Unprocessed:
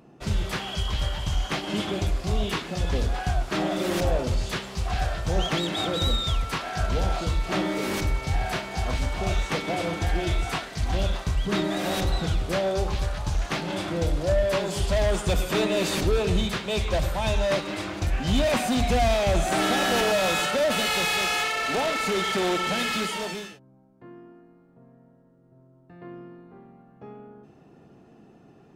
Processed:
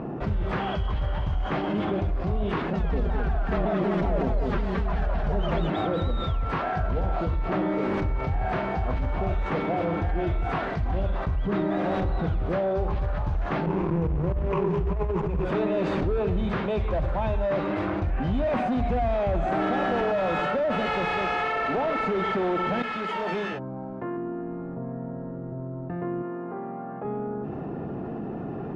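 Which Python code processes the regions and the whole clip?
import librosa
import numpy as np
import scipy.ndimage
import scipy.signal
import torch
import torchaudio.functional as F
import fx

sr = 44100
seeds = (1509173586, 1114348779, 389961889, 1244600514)

y = fx.chain(x, sr, fx.comb(ms=4.7, depth=0.9),
    fx.echo_single(ms=219, db=-4.5),
    fx.vibrato_shape(shape='saw_down', rate_hz=5.4, depth_cents=160.0), at=(2.73, 5.7))
y = fx.chain(y, sr, fx.ripple_eq(per_octave=0.75, db=17),
    fx.backlash(play_db=-21.5),
    fx.over_compress(threshold_db=-23.0, ratio=-0.5), at=(13.66, 15.45))
y = fx.chain(y, sr, fx.low_shelf(hz=390.0, db=-9.5),
    fx.over_compress(threshold_db=-36.0, ratio=-1.0), at=(22.82, 24.17))
y = fx.chain(y, sr, fx.highpass(hz=690.0, slope=6),
    fx.air_absorb(metres=360.0), at=(26.22, 27.05))
y = scipy.signal.sosfilt(scipy.signal.butter(2, 1400.0, 'lowpass', fs=sr, output='sos'), y)
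y = fx.env_flatten(y, sr, amount_pct=70)
y = y * 10.0 ** (-8.0 / 20.0)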